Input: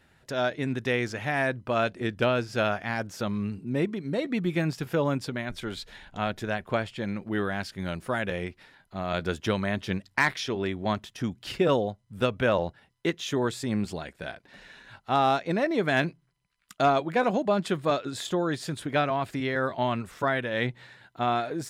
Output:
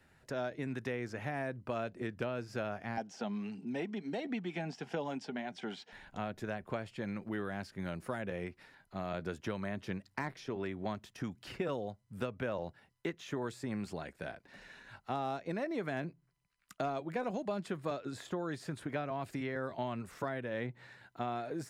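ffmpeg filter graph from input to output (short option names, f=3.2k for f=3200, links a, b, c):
-filter_complex "[0:a]asettb=1/sr,asplit=3[a][b][c];[a]atrim=end=2.974[d];[b]atrim=start=2.97:end=5.92,asetpts=PTS-STARTPTS,afade=t=in:d=0.004:c=qsin,afade=t=out:st=2.946:d=0.004:c=qsin,highpass=f=190:w=0.5412,highpass=f=190:w=1.3066,equalizer=f=330:t=q:w=4:g=-6,equalizer=f=540:t=q:w=4:g=-6,equalizer=f=770:t=q:w=4:g=10,equalizer=f=1.2k:t=q:w=4:g=-8,equalizer=f=3.1k:t=q:w=4:g=9,equalizer=f=5.5k:t=q:w=4:g=6,lowpass=f=8.2k:w=0.5412,lowpass=f=8.2k:w=1.3066,aphaser=in_gain=1:out_gain=1:delay=4.9:decay=0.31:speed=1.5:type=sinusoidal[e];[c]atrim=start=5.916[f];[d][e]acrossfade=d=0.004:c1=hsin:c2=qsin[g];[g][f]acrossfade=d=0.004:c1=qsin:c2=hsin,equalizer=f=3.4k:t=o:w=0.46:g=-5,acrossover=split=89|790|2300[h][i][j][k];[h]acompressor=threshold=-58dB:ratio=4[l];[i]acompressor=threshold=-32dB:ratio=4[m];[j]acompressor=threshold=-42dB:ratio=4[n];[k]acompressor=threshold=-50dB:ratio=4[o];[l][m][n][o]amix=inputs=4:normalize=0,volume=-4dB"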